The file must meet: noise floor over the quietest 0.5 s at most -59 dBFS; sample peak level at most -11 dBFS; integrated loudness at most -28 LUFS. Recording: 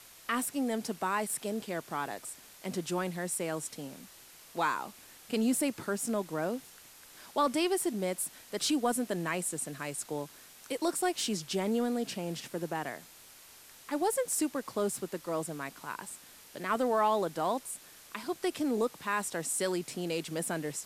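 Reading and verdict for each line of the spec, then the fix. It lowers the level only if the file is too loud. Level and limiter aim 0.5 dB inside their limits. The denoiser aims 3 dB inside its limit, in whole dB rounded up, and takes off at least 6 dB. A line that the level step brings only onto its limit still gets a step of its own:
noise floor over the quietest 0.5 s -54 dBFS: fail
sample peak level -16.5 dBFS: pass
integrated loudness -33.0 LUFS: pass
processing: noise reduction 8 dB, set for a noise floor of -54 dBFS

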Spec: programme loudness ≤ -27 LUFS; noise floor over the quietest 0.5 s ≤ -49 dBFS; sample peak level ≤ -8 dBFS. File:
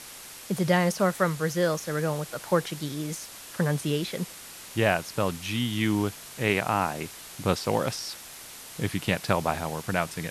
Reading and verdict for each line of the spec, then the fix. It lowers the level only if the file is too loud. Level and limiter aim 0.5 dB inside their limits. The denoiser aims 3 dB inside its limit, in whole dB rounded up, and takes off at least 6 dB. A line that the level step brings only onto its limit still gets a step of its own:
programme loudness -28.0 LUFS: pass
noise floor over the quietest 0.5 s -44 dBFS: fail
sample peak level -10.0 dBFS: pass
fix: noise reduction 8 dB, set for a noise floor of -44 dBFS

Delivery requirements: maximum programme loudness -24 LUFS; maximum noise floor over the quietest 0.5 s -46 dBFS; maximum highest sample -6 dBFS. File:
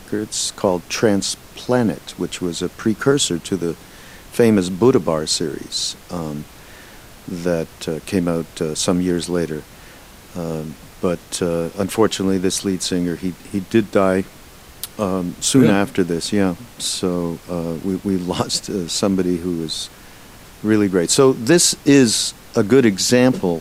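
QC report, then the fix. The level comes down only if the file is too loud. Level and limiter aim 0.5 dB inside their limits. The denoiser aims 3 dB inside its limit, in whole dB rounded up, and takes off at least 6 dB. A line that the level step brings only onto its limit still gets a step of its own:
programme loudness -19.0 LUFS: fail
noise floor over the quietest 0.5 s -42 dBFS: fail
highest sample -2.5 dBFS: fail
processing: trim -5.5 dB

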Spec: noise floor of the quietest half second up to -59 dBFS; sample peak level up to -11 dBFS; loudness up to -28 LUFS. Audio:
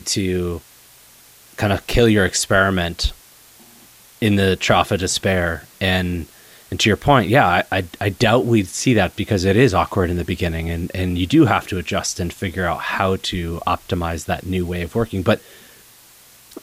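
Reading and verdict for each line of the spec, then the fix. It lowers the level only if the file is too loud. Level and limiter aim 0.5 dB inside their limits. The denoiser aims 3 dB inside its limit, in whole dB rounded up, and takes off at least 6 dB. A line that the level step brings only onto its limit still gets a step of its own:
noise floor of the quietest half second -48 dBFS: fail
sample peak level -1.5 dBFS: fail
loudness -18.5 LUFS: fail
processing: noise reduction 6 dB, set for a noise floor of -48 dBFS; trim -10 dB

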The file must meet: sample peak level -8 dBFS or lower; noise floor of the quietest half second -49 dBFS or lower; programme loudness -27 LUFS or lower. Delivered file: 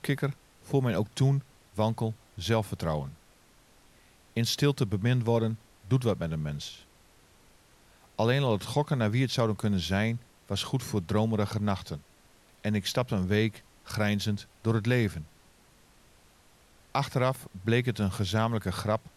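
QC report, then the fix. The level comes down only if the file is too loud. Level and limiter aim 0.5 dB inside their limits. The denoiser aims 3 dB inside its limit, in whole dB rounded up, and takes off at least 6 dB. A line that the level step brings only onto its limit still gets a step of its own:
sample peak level -12.5 dBFS: pass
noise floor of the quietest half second -60 dBFS: pass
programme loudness -29.5 LUFS: pass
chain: none needed

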